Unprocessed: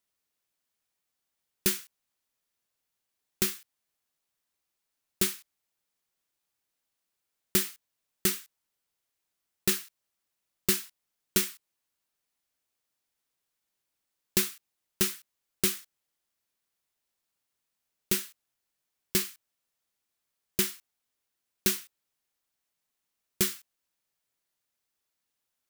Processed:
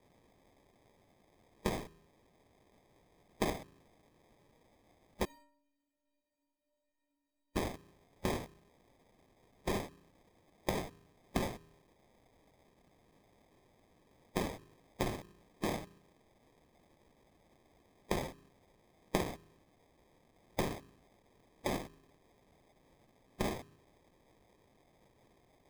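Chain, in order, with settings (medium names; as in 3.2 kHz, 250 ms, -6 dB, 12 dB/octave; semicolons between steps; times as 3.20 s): de-hum 80.74 Hz, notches 22; harmonic-percussive split percussive -4 dB; peak limiter -25 dBFS, peak gain reduction 11.5 dB; compression 5:1, threshold -51 dBFS, peak gain reduction 16.5 dB; sample-and-hold 31×; 5.25–7.56 s: inharmonic resonator 280 Hz, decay 0.84 s, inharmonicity 0.03; trim +17.5 dB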